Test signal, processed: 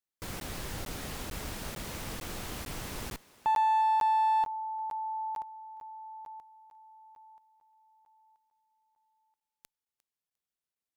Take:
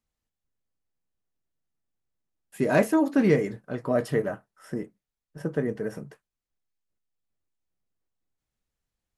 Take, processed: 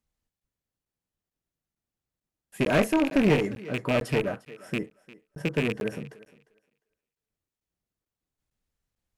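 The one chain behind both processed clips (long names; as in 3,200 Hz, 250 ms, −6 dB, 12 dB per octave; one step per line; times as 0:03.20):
loose part that buzzes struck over −32 dBFS, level −18 dBFS
low-shelf EQ 270 Hz +3 dB
on a send: feedback echo with a high-pass in the loop 352 ms, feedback 18%, high-pass 280 Hz, level −19 dB
on the sum: asymmetric clip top −24 dBFS
regular buffer underruns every 0.45 s, samples 512, zero, from 0:00.40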